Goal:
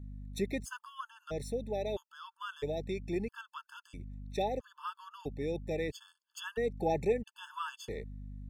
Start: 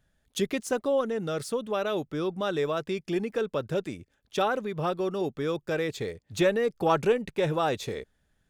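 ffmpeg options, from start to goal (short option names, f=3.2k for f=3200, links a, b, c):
-af "aeval=exprs='val(0)+0.0141*(sin(2*PI*50*n/s)+sin(2*PI*2*50*n/s)/2+sin(2*PI*3*50*n/s)/3+sin(2*PI*4*50*n/s)/4+sin(2*PI*5*50*n/s)/5)':c=same,afftfilt=real='re*gt(sin(2*PI*0.76*pts/sr)*(1-2*mod(floor(b*sr/1024/880),2)),0)':imag='im*gt(sin(2*PI*0.76*pts/sr)*(1-2*mod(floor(b*sr/1024/880),2)),0)':win_size=1024:overlap=0.75,volume=-6dB"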